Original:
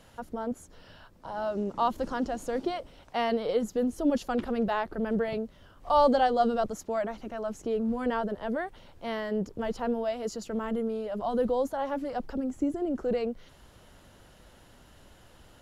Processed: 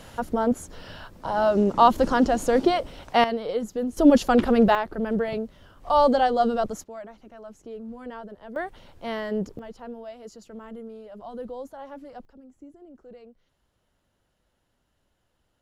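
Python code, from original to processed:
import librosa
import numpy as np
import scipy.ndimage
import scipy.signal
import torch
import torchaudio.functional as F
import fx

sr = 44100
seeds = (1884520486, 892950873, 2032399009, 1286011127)

y = fx.gain(x, sr, db=fx.steps((0.0, 10.5), (3.24, 0.0), (3.97, 10.5), (4.75, 3.0), (6.84, -9.0), (8.56, 2.5), (9.59, -9.0), (12.25, -18.0)))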